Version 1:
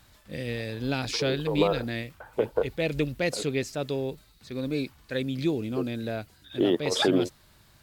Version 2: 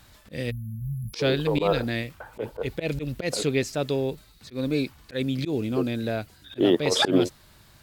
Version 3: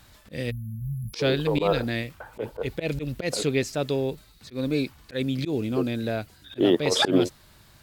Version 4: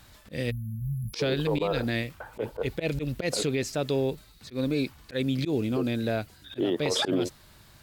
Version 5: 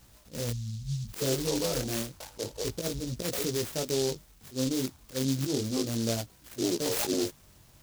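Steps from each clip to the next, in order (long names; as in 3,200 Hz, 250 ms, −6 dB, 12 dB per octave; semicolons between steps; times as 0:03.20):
time-frequency box erased 0:00.51–0:01.14, 230–10,000 Hz; volume swells 103 ms; level +4 dB
no processing that can be heard
brickwall limiter −17.5 dBFS, peak gain reduction 8.5 dB
chorus effect 0.31 Hz, delay 16.5 ms, depth 7 ms; short delay modulated by noise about 5,000 Hz, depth 0.16 ms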